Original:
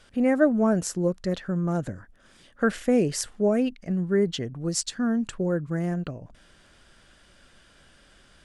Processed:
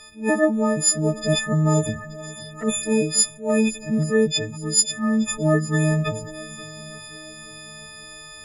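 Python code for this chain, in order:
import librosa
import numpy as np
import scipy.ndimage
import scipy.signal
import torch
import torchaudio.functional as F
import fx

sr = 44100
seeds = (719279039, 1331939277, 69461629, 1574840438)

y = fx.freq_snap(x, sr, grid_st=6)
y = fx.rider(y, sr, range_db=5, speed_s=0.5)
y = fx.env_flanger(y, sr, rest_ms=2.9, full_db=-18.0, at=(1.73, 2.85), fade=0.02)
y = fx.echo_swing(y, sr, ms=876, ratio=1.5, feedback_pct=42, wet_db=-19.0)
y = fx.attack_slew(y, sr, db_per_s=190.0)
y = y * 10.0 ** (2.5 / 20.0)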